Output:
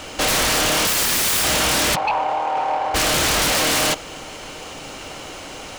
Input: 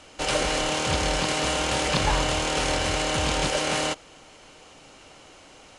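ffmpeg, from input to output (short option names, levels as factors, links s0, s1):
-filter_complex "[0:a]asettb=1/sr,asplit=3[s0][s1][s2];[s0]atrim=end=0.874[s3];[s1]atrim=start=0.87:end=1.44,asetpts=PTS-STARTPTS,afade=t=in:d=0.004:c=qsin,afade=t=out:st=0.566:d=0.004:c=qsin,acontrast=86[s4];[s2]atrim=start=1.436[s5];[s3][s4]acrossfade=d=0.004:c1=hsin:c2=qsin[s6];[s6][s5]acrossfade=d=0.004:c1=qsin:c2=hsin,acrusher=bits=4:mode=log:mix=0:aa=0.000001,asplit=3[s7][s8][s9];[s7]afade=t=out:st=1.94:d=0.02[s10];[s8]bandpass=f=830:t=q:w=5:csg=0,afade=t=in:st=1.94:d=0.02,afade=t=out:st=2.94:d=0.02[s11];[s9]afade=t=in:st=2.94:d=0.02[s12];[s10][s11][s12]amix=inputs=3:normalize=0,aeval=exprs='0.422*sin(PI/2*8.91*val(0)/0.422)':c=same,volume=0.398"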